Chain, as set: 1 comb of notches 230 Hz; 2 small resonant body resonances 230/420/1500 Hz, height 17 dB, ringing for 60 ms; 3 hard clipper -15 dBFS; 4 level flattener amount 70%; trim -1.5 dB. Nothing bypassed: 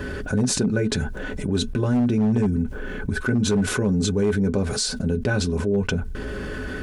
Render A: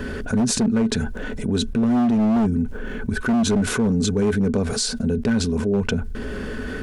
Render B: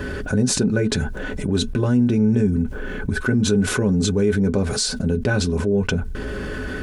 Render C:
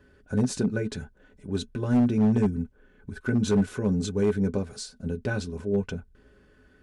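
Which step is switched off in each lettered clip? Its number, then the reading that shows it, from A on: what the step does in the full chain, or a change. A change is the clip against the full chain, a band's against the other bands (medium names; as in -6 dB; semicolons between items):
1, 1 kHz band +4.0 dB; 3, loudness change +2.5 LU; 4, momentary loudness spread change +4 LU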